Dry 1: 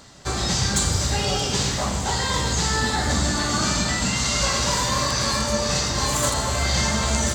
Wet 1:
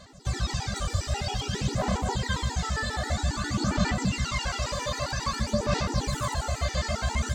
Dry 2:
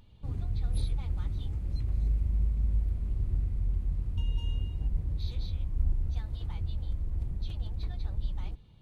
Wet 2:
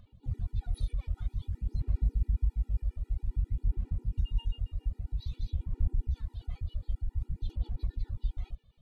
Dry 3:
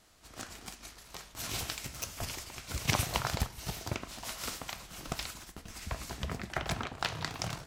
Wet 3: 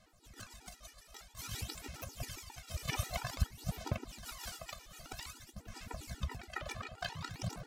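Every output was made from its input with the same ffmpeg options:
ffmpeg -i in.wav -filter_complex "[0:a]acrossover=split=3400[link_01][link_02];[link_02]acompressor=threshold=-32dB:ratio=4:attack=1:release=60[link_03];[link_01][link_03]amix=inputs=2:normalize=0,aphaser=in_gain=1:out_gain=1:delay=1.7:decay=0.56:speed=0.52:type=sinusoidal,afftfilt=real='re*gt(sin(2*PI*7.4*pts/sr)*(1-2*mod(floor(b*sr/1024/250),2)),0)':imag='im*gt(sin(2*PI*7.4*pts/sr)*(1-2*mod(floor(b*sr/1024/250),2)),0)':win_size=1024:overlap=0.75,volume=-4.5dB" out.wav

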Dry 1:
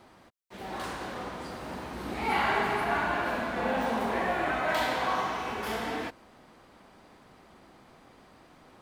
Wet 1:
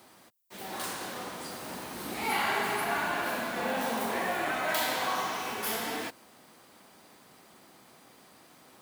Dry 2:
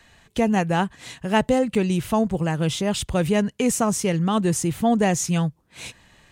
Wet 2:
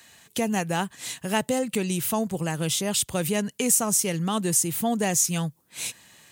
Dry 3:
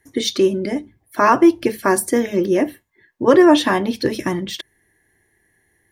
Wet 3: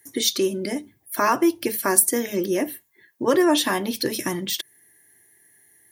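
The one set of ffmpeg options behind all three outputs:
ffmpeg -i in.wav -filter_complex "[0:a]highpass=120,aemphasis=mode=production:type=75fm,asplit=2[link_01][link_02];[link_02]acompressor=threshold=-24dB:ratio=6,volume=1.5dB[link_03];[link_01][link_03]amix=inputs=2:normalize=0,volume=-8.5dB" out.wav

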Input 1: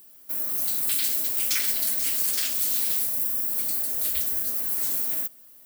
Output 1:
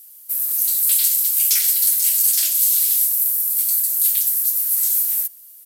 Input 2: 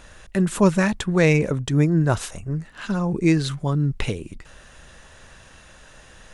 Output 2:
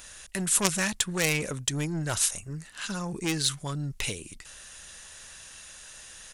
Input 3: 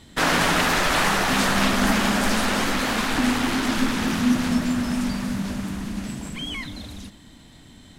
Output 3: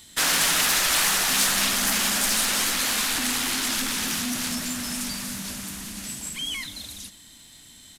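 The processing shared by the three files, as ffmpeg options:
ffmpeg -i in.wav -af "aresample=32000,aresample=44100,aeval=exprs='0.631*(cos(1*acos(clip(val(0)/0.631,-1,1)))-cos(1*PI/2))+0.224*(cos(3*acos(clip(val(0)/0.631,-1,1)))-cos(3*PI/2))+0.126*(cos(5*acos(clip(val(0)/0.631,-1,1)))-cos(5*PI/2))':channel_layout=same,crystalizer=i=9.5:c=0,volume=-10dB" out.wav

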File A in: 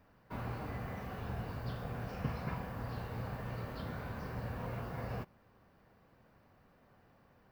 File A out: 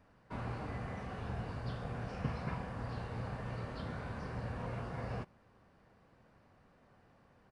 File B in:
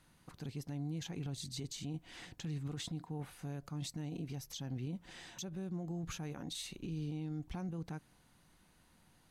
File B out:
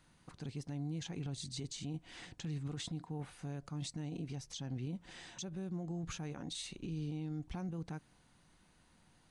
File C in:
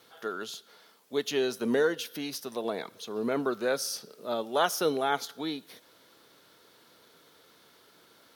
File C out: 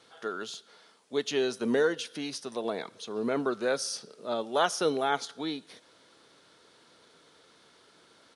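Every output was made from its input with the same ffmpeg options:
ffmpeg -i in.wav -af "aresample=22050,aresample=44100" out.wav

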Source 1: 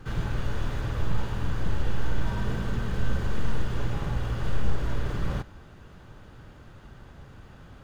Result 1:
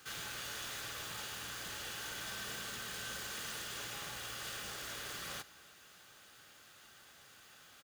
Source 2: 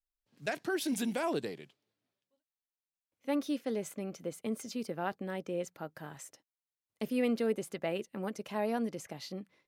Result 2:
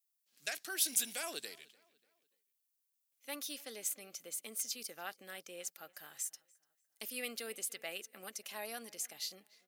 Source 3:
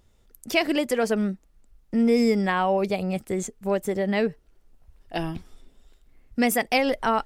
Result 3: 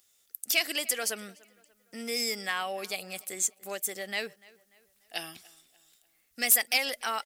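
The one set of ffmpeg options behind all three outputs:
ffmpeg -i in.wav -filter_complex "[0:a]aderivative,asplit=2[link_01][link_02];[link_02]adelay=293,lowpass=frequency=4000:poles=1,volume=-23dB,asplit=2[link_03][link_04];[link_04]adelay=293,lowpass=frequency=4000:poles=1,volume=0.44,asplit=2[link_05][link_06];[link_06]adelay=293,lowpass=frequency=4000:poles=1,volume=0.44[link_07];[link_01][link_03][link_05][link_07]amix=inputs=4:normalize=0,asoftclip=type=tanh:threshold=-22.5dB,bandreject=frequency=960:width=8.2,volume=9dB" out.wav

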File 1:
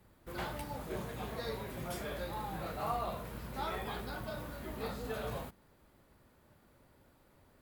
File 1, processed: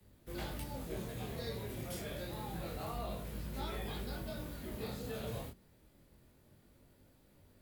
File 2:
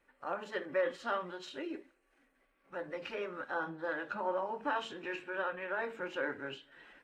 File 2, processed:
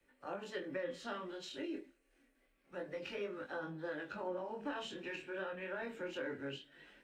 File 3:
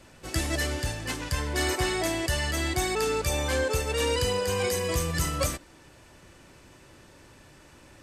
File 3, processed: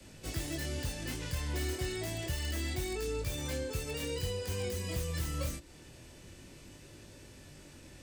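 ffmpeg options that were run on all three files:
ffmpeg -i in.wav -filter_complex "[0:a]flanger=delay=19.5:depth=7.1:speed=0.28,equalizer=frequency=1100:width=0.76:gain=-10,acrossover=split=110|300[link_01][link_02][link_03];[link_01]acompressor=threshold=-42dB:ratio=4[link_04];[link_02]acompressor=threshold=-50dB:ratio=4[link_05];[link_03]acompressor=threshold=-44dB:ratio=4[link_06];[link_04][link_05][link_06]amix=inputs=3:normalize=0,acrossover=split=270|760|3500[link_07][link_08][link_09][link_10];[link_10]aeval=exprs='(mod(141*val(0)+1,2)-1)/141':channel_layout=same[link_11];[link_07][link_08][link_09][link_11]amix=inputs=4:normalize=0,volume=5dB" out.wav

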